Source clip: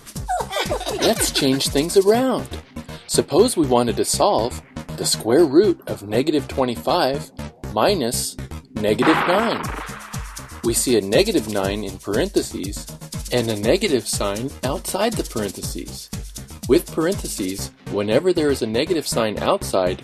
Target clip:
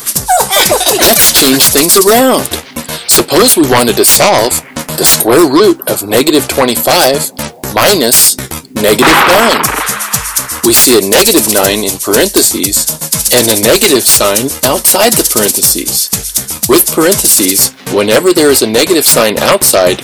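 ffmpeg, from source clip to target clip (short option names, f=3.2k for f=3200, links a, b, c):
-af "aemphasis=mode=production:type=bsi,aeval=exprs='1.41*sin(PI/2*6.31*val(0)/1.41)':c=same,volume=-4dB"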